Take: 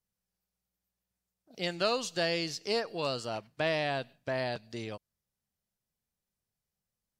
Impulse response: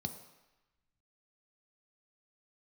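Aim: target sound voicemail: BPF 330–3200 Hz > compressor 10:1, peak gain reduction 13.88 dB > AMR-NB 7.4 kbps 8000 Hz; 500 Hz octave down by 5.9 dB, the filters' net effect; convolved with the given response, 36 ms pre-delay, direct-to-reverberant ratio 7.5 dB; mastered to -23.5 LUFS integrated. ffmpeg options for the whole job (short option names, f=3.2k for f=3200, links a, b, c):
-filter_complex "[0:a]equalizer=f=500:t=o:g=-7,asplit=2[a][b];[1:a]atrim=start_sample=2205,adelay=36[c];[b][c]afir=irnorm=-1:irlink=0,volume=-6.5dB[d];[a][d]amix=inputs=2:normalize=0,highpass=330,lowpass=3.2k,acompressor=threshold=-41dB:ratio=10,volume=24dB" -ar 8000 -c:a libopencore_amrnb -b:a 7400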